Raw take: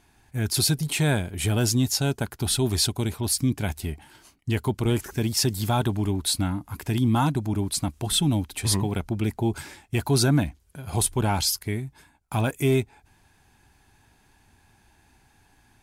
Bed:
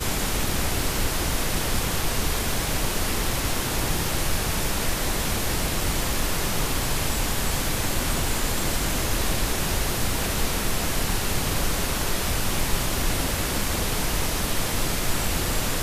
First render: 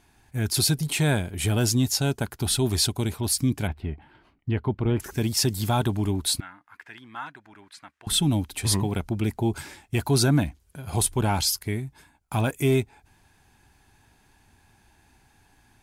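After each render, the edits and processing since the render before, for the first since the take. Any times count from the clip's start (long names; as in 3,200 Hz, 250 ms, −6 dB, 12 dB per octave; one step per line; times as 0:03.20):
0:03.67–0:05.00: high-frequency loss of the air 430 metres
0:06.40–0:08.07: resonant band-pass 1,700 Hz, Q 2.9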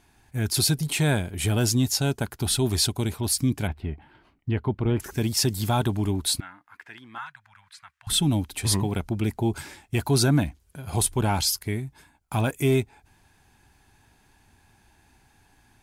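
0:07.18–0:08.10: Chebyshev band-stop filter 110–1,100 Hz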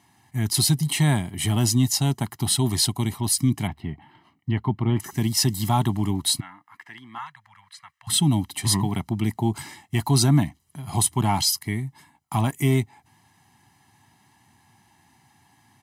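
high-pass filter 110 Hz 24 dB per octave
comb filter 1 ms, depth 81%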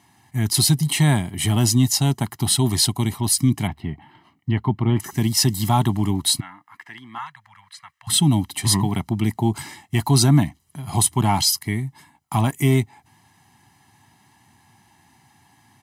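level +3 dB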